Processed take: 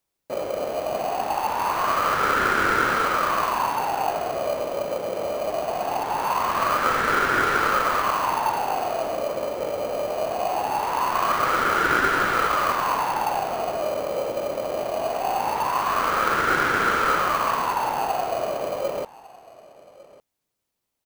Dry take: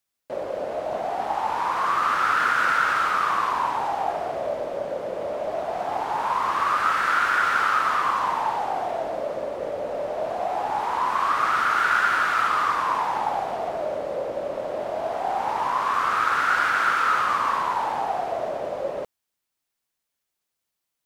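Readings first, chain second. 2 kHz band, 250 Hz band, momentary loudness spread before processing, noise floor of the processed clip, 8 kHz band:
0.0 dB, +6.5 dB, 10 LU, -81 dBFS, +7.0 dB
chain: in parallel at -7.5 dB: sample-rate reducer 1.8 kHz, jitter 0%; on the sum: delay 1152 ms -21 dB

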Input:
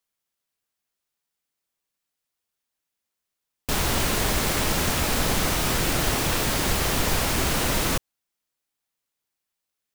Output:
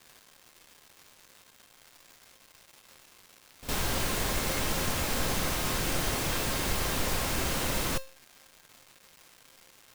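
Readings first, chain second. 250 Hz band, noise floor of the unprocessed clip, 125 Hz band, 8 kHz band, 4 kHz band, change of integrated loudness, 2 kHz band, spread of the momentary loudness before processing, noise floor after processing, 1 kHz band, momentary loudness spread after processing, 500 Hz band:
-7.0 dB, -84 dBFS, -7.0 dB, -6.0 dB, -6.5 dB, -6.5 dB, -6.0 dB, 2 LU, -60 dBFS, -6.5 dB, 2 LU, -6.0 dB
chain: crackle 590 per s -35 dBFS; feedback comb 530 Hz, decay 0.37 s, mix 70%; reverse echo 59 ms -14.5 dB; trim +3 dB

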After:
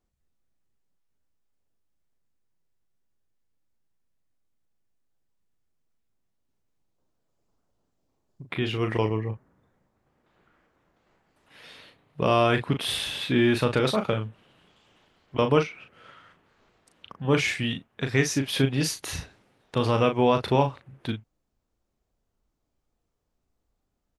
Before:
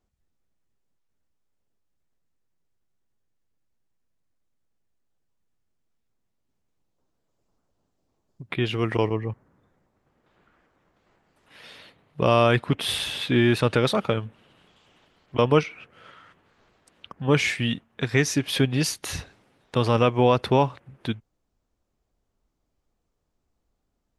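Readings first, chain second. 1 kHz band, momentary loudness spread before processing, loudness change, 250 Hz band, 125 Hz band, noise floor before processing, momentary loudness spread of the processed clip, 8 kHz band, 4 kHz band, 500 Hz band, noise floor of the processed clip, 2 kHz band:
-1.5 dB, 14 LU, -2.0 dB, -1.5 dB, -2.5 dB, -76 dBFS, 13 LU, -1.5 dB, -1.5 dB, -2.0 dB, -78 dBFS, -1.5 dB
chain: doubling 37 ms -7 dB; trim -2.5 dB

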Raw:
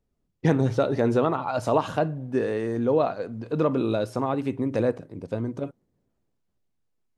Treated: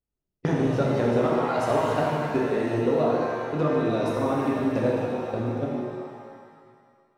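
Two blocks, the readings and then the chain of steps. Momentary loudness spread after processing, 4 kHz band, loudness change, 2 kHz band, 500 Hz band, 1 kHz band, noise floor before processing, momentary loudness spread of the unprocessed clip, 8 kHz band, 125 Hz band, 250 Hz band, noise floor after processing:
7 LU, +1.5 dB, +0.5 dB, +3.0 dB, +1.0 dB, +2.0 dB, -75 dBFS, 9 LU, no reading, 0.0 dB, +1.0 dB, -84 dBFS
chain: in parallel at +3 dB: level held to a coarse grid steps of 22 dB; on the sum: gate -27 dBFS, range -16 dB; compression 3:1, threshold -25 dBFS, peak gain reduction 12 dB; pitch-shifted reverb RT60 1.9 s, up +7 st, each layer -8 dB, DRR -3.5 dB; trim -1.5 dB

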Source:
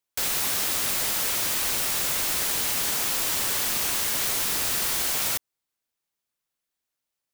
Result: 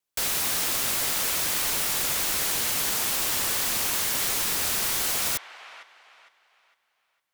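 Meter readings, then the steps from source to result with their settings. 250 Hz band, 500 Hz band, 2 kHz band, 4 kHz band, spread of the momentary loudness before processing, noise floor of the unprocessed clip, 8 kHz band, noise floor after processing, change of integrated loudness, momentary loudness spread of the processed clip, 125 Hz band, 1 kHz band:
0.0 dB, 0.0 dB, +0.5 dB, 0.0 dB, 0 LU, -85 dBFS, 0.0 dB, -74 dBFS, -0.5 dB, 1 LU, 0.0 dB, +0.5 dB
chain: vibrato 2.3 Hz 36 cents; on a send: feedback echo behind a band-pass 456 ms, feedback 33%, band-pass 1.4 kHz, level -10 dB

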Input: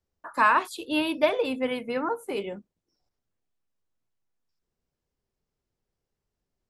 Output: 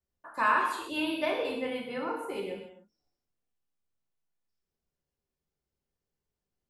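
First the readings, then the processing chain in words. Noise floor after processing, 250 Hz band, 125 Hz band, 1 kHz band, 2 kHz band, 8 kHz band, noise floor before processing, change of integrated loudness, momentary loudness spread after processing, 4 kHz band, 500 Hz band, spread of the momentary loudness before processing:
under -85 dBFS, -5.5 dB, -4.5 dB, -4.5 dB, -4.0 dB, -4.5 dB, under -85 dBFS, -4.5 dB, 12 LU, -4.0 dB, -6.0 dB, 13 LU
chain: gated-style reverb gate 320 ms falling, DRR -1 dB; trim -8 dB

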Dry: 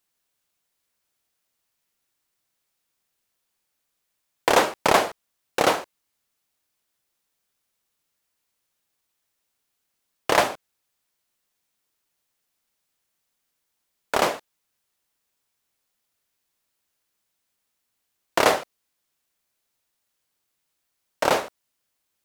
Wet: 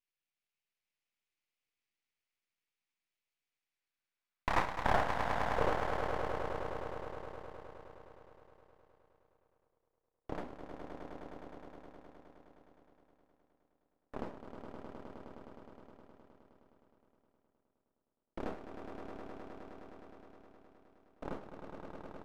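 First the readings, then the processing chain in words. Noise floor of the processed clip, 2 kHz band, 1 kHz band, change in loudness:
under -85 dBFS, -13.5 dB, -12.0 dB, -16.5 dB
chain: band-pass sweep 2.4 kHz -> 230 Hz, 3.53–6.46 s; echo with a slow build-up 104 ms, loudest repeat 5, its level -8.5 dB; half-wave rectifier; trim -4 dB

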